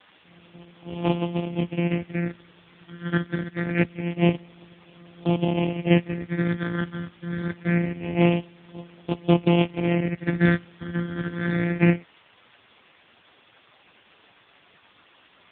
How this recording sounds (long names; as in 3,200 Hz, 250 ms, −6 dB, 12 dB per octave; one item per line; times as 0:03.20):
a buzz of ramps at a fixed pitch in blocks of 256 samples
phaser sweep stages 12, 0.25 Hz, lowest notch 800–1,700 Hz
a quantiser's noise floor 8 bits, dither triangular
AMR narrowband